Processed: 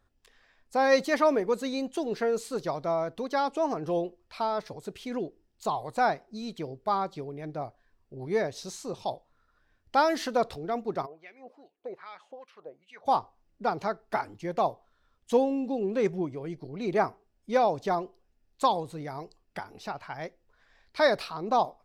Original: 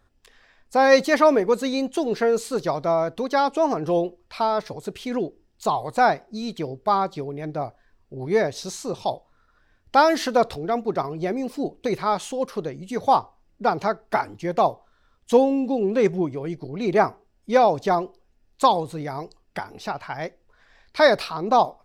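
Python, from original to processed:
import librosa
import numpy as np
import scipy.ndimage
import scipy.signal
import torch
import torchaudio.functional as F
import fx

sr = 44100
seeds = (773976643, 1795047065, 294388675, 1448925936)

y = fx.filter_lfo_bandpass(x, sr, shape='sine', hz=2.5, low_hz=580.0, high_hz=2700.0, q=3.1, at=(11.05, 13.05), fade=0.02)
y = y * librosa.db_to_amplitude(-7.0)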